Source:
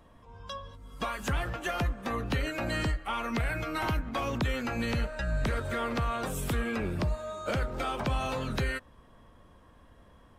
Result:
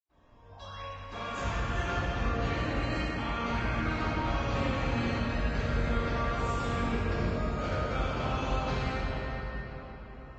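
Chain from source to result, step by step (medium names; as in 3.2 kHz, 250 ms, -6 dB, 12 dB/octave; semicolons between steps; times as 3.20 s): 0.38–0.76 s: painted sound rise 590–3000 Hz -49 dBFS; 2.50–3.12 s: Chebyshev high-pass 170 Hz, order 2; reverberation RT60 4.9 s, pre-delay 99 ms; Vorbis 32 kbps 16 kHz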